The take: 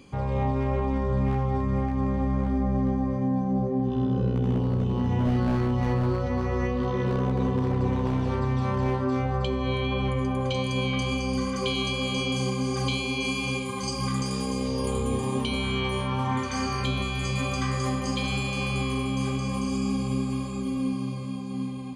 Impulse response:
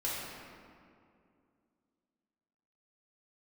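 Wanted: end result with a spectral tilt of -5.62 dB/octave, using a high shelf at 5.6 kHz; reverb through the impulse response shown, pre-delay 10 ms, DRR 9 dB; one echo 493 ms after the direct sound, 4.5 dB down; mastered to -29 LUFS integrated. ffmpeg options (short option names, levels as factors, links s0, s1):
-filter_complex "[0:a]highshelf=f=5600:g=-5,aecho=1:1:493:0.596,asplit=2[s0][s1];[1:a]atrim=start_sample=2205,adelay=10[s2];[s1][s2]afir=irnorm=-1:irlink=0,volume=0.188[s3];[s0][s3]amix=inputs=2:normalize=0,volume=0.708"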